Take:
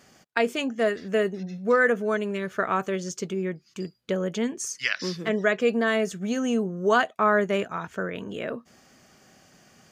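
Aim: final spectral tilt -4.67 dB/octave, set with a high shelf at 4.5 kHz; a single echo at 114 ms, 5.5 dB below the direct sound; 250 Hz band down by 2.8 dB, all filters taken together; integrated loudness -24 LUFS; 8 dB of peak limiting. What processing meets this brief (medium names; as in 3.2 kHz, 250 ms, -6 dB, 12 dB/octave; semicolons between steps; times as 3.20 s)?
peaking EQ 250 Hz -3.5 dB; treble shelf 4.5 kHz -4.5 dB; peak limiter -17 dBFS; delay 114 ms -5.5 dB; trim +4.5 dB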